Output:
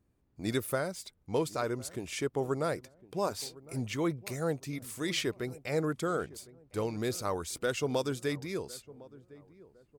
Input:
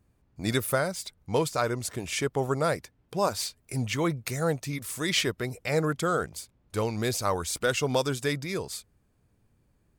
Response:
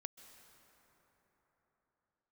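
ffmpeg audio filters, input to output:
-filter_complex "[0:a]equalizer=f=330:t=o:w=1.2:g=5.5,asplit=2[s0][s1];[s1]adelay=1057,lowpass=f=860:p=1,volume=0.112,asplit=2[s2][s3];[s3]adelay=1057,lowpass=f=860:p=1,volume=0.41,asplit=2[s4][s5];[s5]adelay=1057,lowpass=f=860:p=1,volume=0.41[s6];[s0][s2][s4][s6]amix=inputs=4:normalize=0,volume=0.422"

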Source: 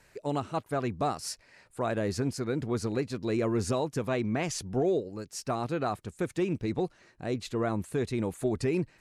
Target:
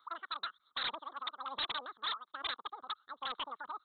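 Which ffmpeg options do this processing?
-filter_complex "[0:a]aphaser=in_gain=1:out_gain=1:delay=1.8:decay=0.58:speed=0.51:type=sinusoidal,asplit=3[s0][s1][s2];[s0]bandpass=f=530:t=q:w=8,volume=1[s3];[s1]bandpass=f=1840:t=q:w=8,volume=0.501[s4];[s2]bandpass=f=2480:t=q:w=8,volume=0.355[s5];[s3][s4][s5]amix=inputs=3:normalize=0,asetrate=103194,aresample=44100,aresample=8000,aeval=exprs='0.02*(abs(mod(val(0)/0.02+3,4)-2)-1)':c=same,aresample=44100,crystalizer=i=5:c=0,volume=0.75"

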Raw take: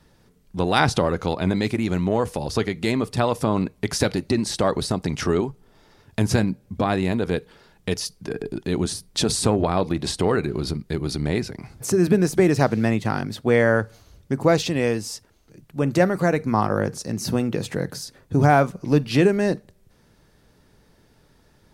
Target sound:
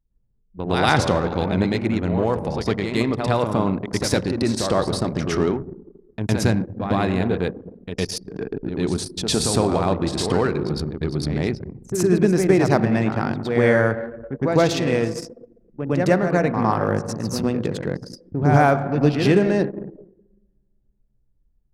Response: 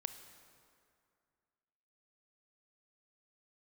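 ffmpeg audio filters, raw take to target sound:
-filter_complex "[0:a]asplit=2[s0][s1];[1:a]atrim=start_sample=2205,adelay=109[s2];[s1][s2]afir=irnorm=-1:irlink=0,volume=2.66[s3];[s0][s3]amix=inputs=2:normalize=0,anlmdn=1580,volume=0.501"

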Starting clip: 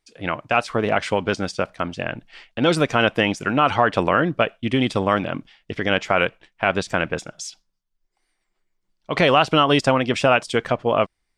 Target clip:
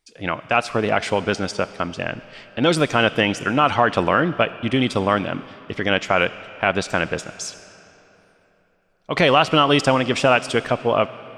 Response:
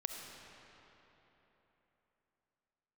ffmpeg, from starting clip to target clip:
-filter_complex "[0:a]asplit=2[s0][s1];[1:a]atrim=start_sample=2205,highshelf=f=2700:g=11.5[s2];[s1][s2]afir=irnorm=-1:irlink=0,volume=0.224[s3];[s0][s3]amix=inputs=2:normalize=0,volume=0.891"

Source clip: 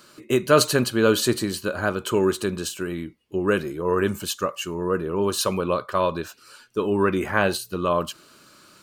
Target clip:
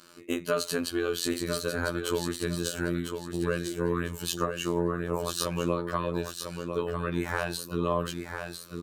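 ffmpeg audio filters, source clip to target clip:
-filter_complex "[0:a]asettb=1/sr,asplit=3[s0][s1][s2];[s0]atrim=end=4.324[s3];[s1]atrim=start=4.32:end=5.3,asetpts=PTS-STARTPTS,afade=t=in:d=0.004:c=qsin,afade=t=out:st=0.976:d=0.004:c=qsin,equalizer=f=750:w=1.1:g=11[s4];[s2]atrim=start=5.296[s5];[s3][s4]acrossfade=d=0.004:c1=hsin:c2=qsin[s6];[s6][s5]acrossfade=d=0.004:c1=qsin:c2=hsin,acompressor=threshold=0.0794:ratio=6,afftfilt=real='hypot(re,im)*cos(PI*b)':imag='0':win_size=2048:overlap=0.75,aecho=1:1:999|1998|2997|3996:0.473|0.137|0.0398|0.0115"

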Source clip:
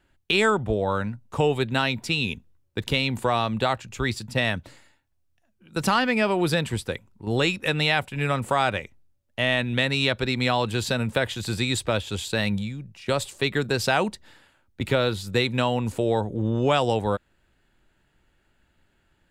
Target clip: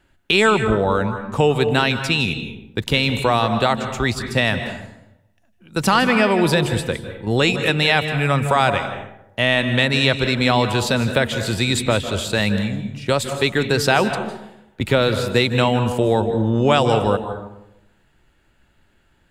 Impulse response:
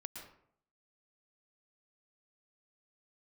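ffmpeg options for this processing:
-filter_complex "[0:a]asplit=2[s0][s1];[1:a]atrim=start_sample=2205,asetrate=31752,aresample=44100[s2];[s1][s2]afir=irnorm=-1:irlink=0,volume=1.33[s3];[s0][s3]amix=inputs=2:normalize=0"

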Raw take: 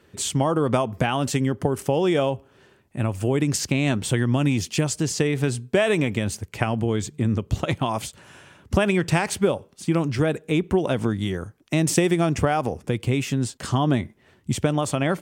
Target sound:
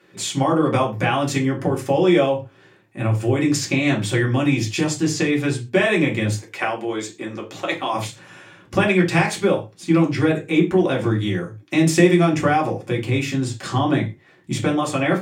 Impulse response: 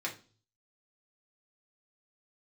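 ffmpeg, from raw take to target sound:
-filter_complex "[0:a]asettb=1/sr,asplit=3[s0][s1][s2];[s0]atrim=end=6.354[s3];[s1]atrim=start=6.35:end=7.94,asetpts=PTS-STARTPTS,afade=t=in:d=0.004:c=qsin,afade=t=out:st=1.586:d=0.004:c=qsin,highpass=400[s4];[s2]atrim=start=7.936[s5];[s3][s4]acrossfade=d=0.004:c1=hsin:c2=qsin[s6];[s6][s5]acrossfade=d=0.004:c1=qsin:c2=hsin[s7];[1:a]atrim=start_sample=2205,afade=t=out:st=0.18:d=0.01,atrim=end_sample=8379[s8];[s7][s8]afir=irnorm=-1:irlink=0,volume=1.12"

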